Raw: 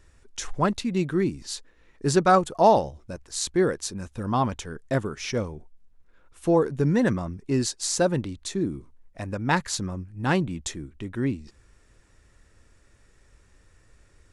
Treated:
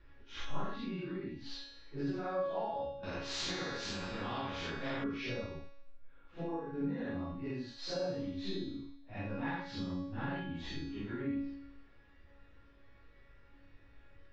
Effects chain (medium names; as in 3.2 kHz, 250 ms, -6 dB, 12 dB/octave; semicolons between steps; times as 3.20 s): phase randomisation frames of 200 ms; inverse Chebyshev low-pass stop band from 8.8 kHz, stop band 50 dB; compression 12:1, threshold -33 dBFS, peak gain reduction 22 dB; feedback comb 280 Hz, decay 0.91 s, mix 90%; 3.03–5.04 s: spectrum-flattening compressor 2:1; trim +14.5 dB